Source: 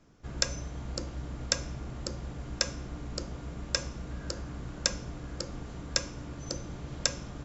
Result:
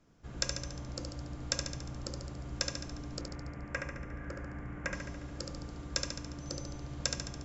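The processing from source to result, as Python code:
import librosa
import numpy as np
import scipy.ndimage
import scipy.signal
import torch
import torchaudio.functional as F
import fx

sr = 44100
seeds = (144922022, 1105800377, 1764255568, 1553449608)

y = fx.high_shelf_res(x, sr, hz=2900.0, db=-12.0, q=3.0, at=(3.21, 4.93))
y = fx.echo_feedback(y, sr, ms=71, feedback_pct=59, wet_db=-5.0)
y = F.gain(torch.from_numpy(y), -5.5).numpy()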